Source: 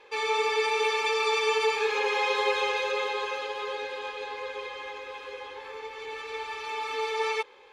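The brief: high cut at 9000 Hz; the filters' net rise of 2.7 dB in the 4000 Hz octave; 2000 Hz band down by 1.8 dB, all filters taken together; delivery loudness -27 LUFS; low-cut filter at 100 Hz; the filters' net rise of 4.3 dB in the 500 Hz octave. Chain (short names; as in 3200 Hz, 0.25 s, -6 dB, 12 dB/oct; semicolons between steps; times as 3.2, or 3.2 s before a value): HPF 100 Hz; LPF 9000 Hz; bell 500 Hz +5 dB; bell 2000 Hz -4 dB; bell 4000 Hz +4.5 dB; gain -0.5 dB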